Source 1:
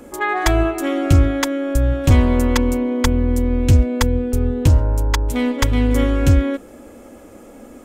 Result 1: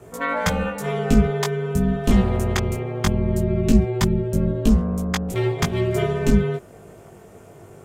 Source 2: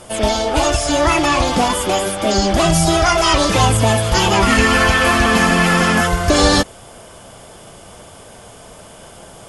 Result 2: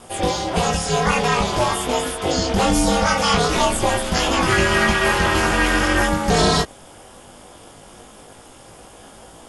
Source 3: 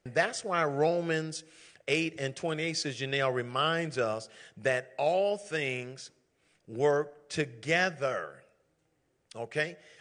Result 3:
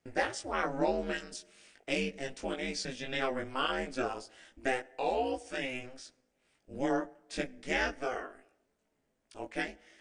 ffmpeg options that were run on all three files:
-af "aeval=exprs='val(0)*sin(2*PI*130*n/s)':c=same,flanger=delay=18:depth=2.2:speed=0.21,volume=2dB"

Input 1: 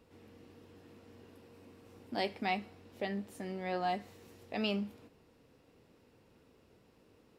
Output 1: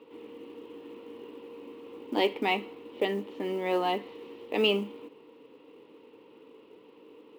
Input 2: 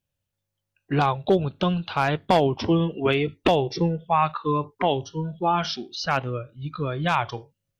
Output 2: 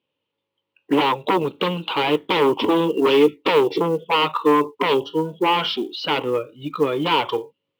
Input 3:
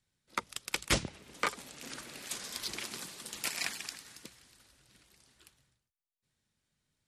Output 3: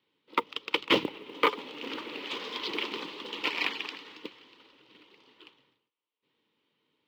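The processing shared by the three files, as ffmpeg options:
-af "aeval=exprs='0.376*sin(PI/2*3.55*val(0)/0.376)':c=same,highpass=300,equalizer=f=300:t=q:w=4:g=9,equalizer=f=450:t=q:w=4:g=9,equalizer=f=680:t=q:w=4:g=-9,equalizer=f=970:t=q:w=4:g=7,equalizer=f=1.6k:t=q:w=4:g=-9,equalizer=f=3k:t=q:w=4:g=6,lowpass=f=3.5k:w=0.5412,lowpass=f=3.5k:w=1.3066,acrusher=bits=8:mode=log:mix=0:aa=0.000001,volume=-6.5dB"

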